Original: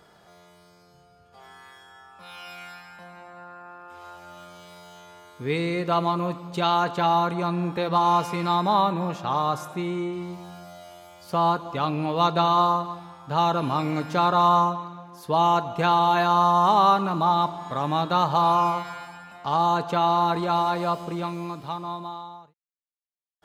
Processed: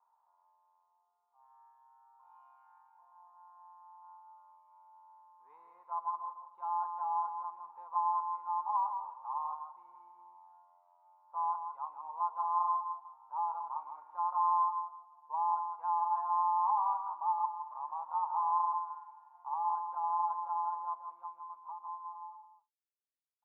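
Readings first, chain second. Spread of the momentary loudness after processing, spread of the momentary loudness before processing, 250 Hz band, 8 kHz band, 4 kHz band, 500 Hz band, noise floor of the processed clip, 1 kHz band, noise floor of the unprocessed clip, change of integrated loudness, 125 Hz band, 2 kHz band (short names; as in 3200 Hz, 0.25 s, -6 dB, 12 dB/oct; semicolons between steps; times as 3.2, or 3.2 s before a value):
14 LU, 17 LU, under -40 dB, n/a, under -40 dB, -30.5 dB, -76 dBFS, -10.5 dB, -57 dBFS, -12.0 dB, under -40 dB, under -35 dB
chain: modulation noise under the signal 18 dB; Butterworth band-pass 950 Hz, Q 4.9; echo 0.164 s -7.5 dB; gain -7.5 dB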